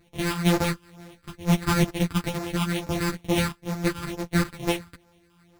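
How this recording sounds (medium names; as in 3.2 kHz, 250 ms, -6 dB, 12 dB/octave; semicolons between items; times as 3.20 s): a buzz of ramps at a fixed pitch in blocks of 256 samples; phasing stages 6, 2.2 Hz, lowest notch 580–2200 Hz; aliases and images of a low sample rate 6.2 kHz, jitter 0%; a shimmering, thickened sound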